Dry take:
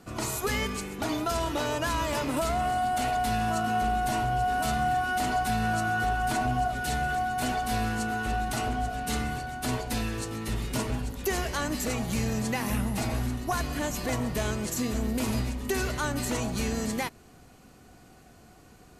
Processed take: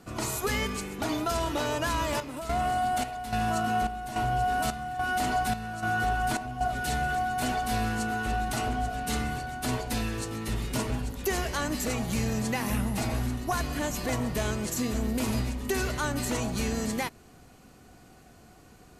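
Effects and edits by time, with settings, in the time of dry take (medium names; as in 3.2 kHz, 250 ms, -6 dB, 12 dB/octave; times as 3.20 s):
1.66–6.61 s: square tremolo 1.2 Hz, depth 65%, duty 65%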